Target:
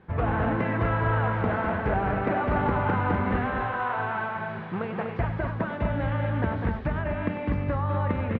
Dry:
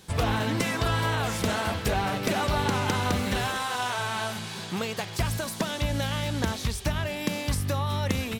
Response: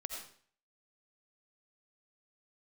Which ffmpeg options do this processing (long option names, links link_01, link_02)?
-af "lowpass=frequency=1900:width=0.5412,lowpass=frequency=1900:width=1.3066,aecho=1:1:97|202|246:0.299|0.501|0.501"